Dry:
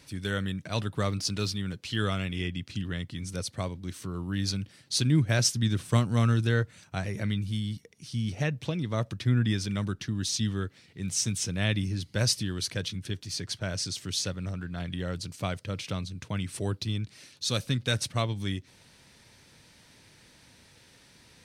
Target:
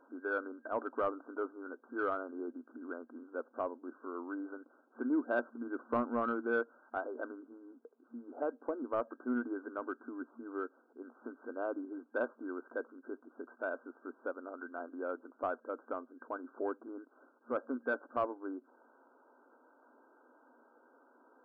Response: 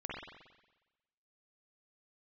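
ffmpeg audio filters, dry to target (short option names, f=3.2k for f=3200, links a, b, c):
-filter_complex "[0:a]afftfilt=real='re*between(b*sr/4096,230,1600)':imag='im*between(b*sr/4096,230,1600)':win_size=4096:overlap=0.75,asplit=2[a][b];[b]highpass=f=720:p=1,volume=11dB,asoftclip=type=tanh:threshold=-16.5dB[c];[a][c]amix=inputs=2:normalize=0,lowpass=f=1.2k:p=1,volume=-6dB,volume=-2dB"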